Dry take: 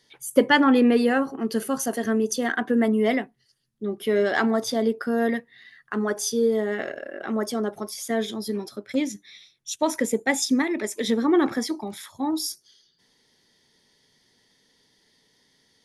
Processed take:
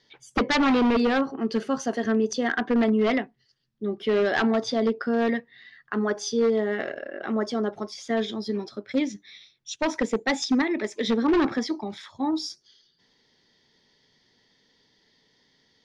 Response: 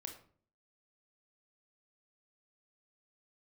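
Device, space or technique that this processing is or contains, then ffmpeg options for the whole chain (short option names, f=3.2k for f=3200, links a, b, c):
synthesiser wavefolder: -af "aeval=exprs='0.168*(abs(mod(val(0)/0.168+3,4)-2)-1)':c=same,lowpass=f=5.5k:w=0.5412,lowpass=f=5.5k:w=1.3066"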